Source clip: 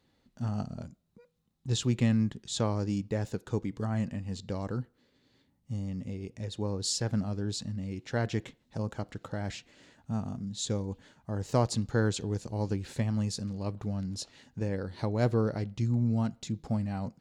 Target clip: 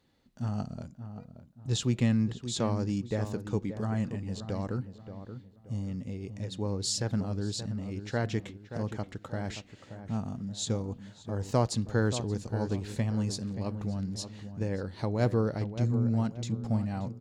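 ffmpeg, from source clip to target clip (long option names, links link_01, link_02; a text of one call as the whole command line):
ffmpeg -i in.wav -filter_complex "[0:a]asplit=2[link_01][link_02];[link_02]adelay=578,lowpass=frequency=1600:poles=1,volume=-10dB,asplit=2[link_03][link_04];[link_04]adelay=578,lowpass=frequency=1600:poles=1,volume=0.37,asplit=2[link_05][link_06];[link_06]adelay=578,lowpass=frequency=1600:poles=1,volume=0.37,asplit=2[link_07][link_08];[link_08]adelay=578,lowpass=frequency=1600:poles=1,volume=0.37[link_09];[link_01][link_03][link_05][link_07][link_09]amix=inputs=5:normalize=0" out.wav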